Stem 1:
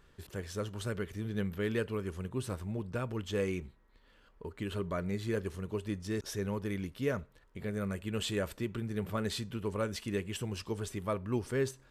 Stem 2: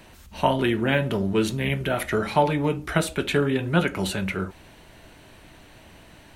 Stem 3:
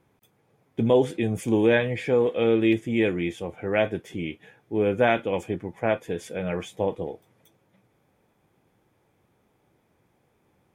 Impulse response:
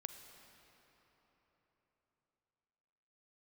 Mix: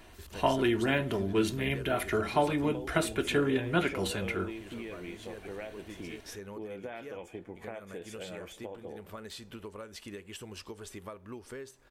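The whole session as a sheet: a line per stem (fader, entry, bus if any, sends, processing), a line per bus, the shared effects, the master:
+1.5 dB, 0.00 s, bus A, no send, dry
-6.0 dB, 0.00 s, no bus, no send, comb 2.9 ms, depth 42%
-0.5 dB, 1.85 s, bus A, send -21 dB, compressor, threshold -24 dBFS, peak gain reduction 9.5 dB
bus A: 0.0 dB, bell 130 Hz -10.5 dB 1.5 oct; compressor 12:1, threshold -40 dBFS, peak gain reduction 16.5 dB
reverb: on, RT60 4.2 s, pre-delay 36 ms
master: dry

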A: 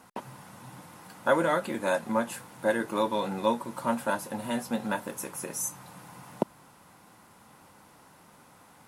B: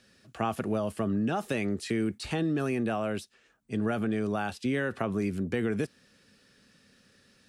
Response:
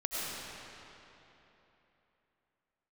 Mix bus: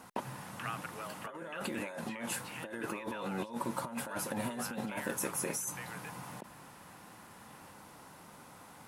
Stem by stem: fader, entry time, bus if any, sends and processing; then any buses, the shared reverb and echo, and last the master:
-3.5 dB, 0.00 s, no send, negative-ratio compressor -36 dBFS, ratio -1
-4.5 dB, 0.25 s, no send, HPF 440 Hz 24 dB/oct; band shelf 1900 Hz +15.5 dB; compressor 2:1, threshold -36 dBFS, peak gain reduction 11.5 dB; auto duck -10 dB, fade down 1.90 s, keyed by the first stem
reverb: off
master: dry

